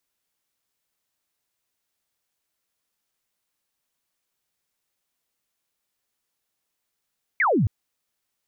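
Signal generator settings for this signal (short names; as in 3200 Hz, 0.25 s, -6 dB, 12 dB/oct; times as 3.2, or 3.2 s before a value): laser zap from 2300 Hz, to 86 Hz, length 0.27 s sine, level -17 dB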